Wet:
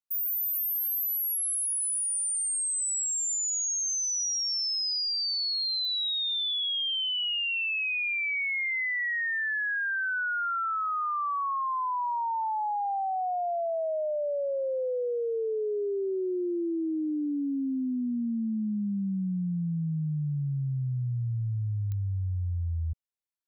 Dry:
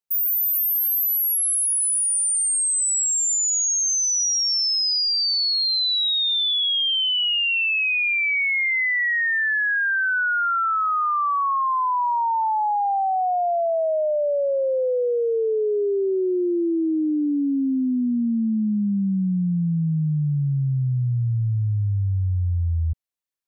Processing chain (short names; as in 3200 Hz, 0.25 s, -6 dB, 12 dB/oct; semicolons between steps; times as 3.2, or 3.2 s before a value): 17.07–17.93 high shelf 4300 Hz +8 dB; pops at 5.85/21.92, -18 dBFS; gain -8 dB